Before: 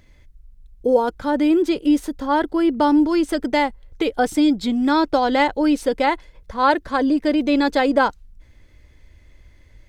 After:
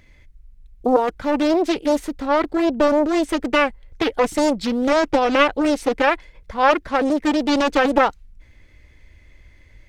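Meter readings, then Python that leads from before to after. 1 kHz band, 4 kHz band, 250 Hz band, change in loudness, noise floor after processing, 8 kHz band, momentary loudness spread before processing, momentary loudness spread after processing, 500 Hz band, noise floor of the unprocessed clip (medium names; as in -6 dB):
0.0 dB, +1.5 dB, -2.5 dB, 0.0 dB, -50 dBFS, +3.5 dB, 5 LU, 5 LU, +2.0 dB, -51 dBFS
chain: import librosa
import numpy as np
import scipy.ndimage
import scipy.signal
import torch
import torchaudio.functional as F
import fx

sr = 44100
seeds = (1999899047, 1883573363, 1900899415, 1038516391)

y = fx.peak_eq(x, sr, hz=2200.0, db=6.0, octaves=0.72)
y = fx.doppler_dist(y, sr, depth_ms=0.82)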